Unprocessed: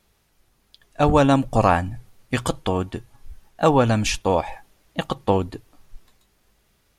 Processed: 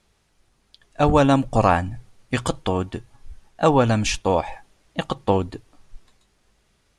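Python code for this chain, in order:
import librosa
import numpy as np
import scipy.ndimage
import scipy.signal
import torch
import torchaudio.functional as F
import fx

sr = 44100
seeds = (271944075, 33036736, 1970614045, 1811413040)

y = scipy.signal.sosfilt(scipy.signal.butter(4, 10000.0, 'lowpass', fs=sr, output='sos'), x)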